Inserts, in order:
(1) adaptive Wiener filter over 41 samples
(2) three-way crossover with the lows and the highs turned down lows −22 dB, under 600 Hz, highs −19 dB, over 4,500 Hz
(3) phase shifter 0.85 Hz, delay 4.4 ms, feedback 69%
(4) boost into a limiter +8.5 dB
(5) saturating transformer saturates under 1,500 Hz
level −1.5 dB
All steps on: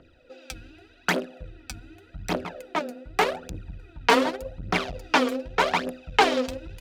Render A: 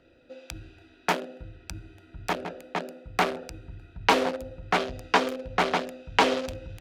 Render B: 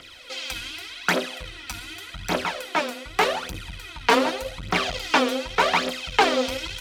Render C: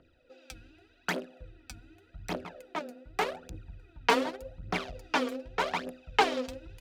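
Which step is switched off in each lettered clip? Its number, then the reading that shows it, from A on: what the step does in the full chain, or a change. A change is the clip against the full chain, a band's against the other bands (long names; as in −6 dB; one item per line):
3, change in crest factor +2.0 dB
1, 4 kHz band +3.0 dB
4, change in crest factor +2.5 dB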